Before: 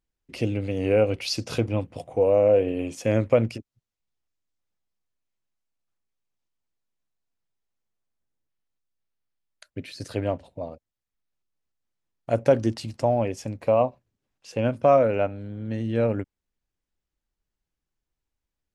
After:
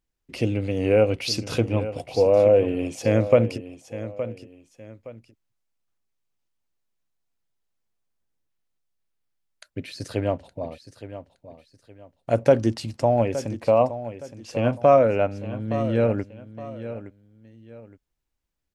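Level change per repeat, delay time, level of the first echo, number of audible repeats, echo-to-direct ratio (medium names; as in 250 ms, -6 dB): -10.0 dB, 867 ms, -13.0 dB, 2, -12.5 dB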